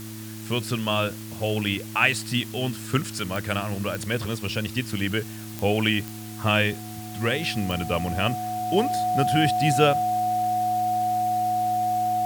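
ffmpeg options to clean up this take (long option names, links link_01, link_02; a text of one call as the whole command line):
ffmpeg -i in.wav -af "adeclick=threshold=4,bandreject=frequency=109.2:width_type=h:width=4,bandreject=frequency=218.4:width_type=h:width=4,bandreject=frequency=327.6:width_type=h:width=4,bandreject=frequency=730:width=30,afwtdn=0.0071" out.wav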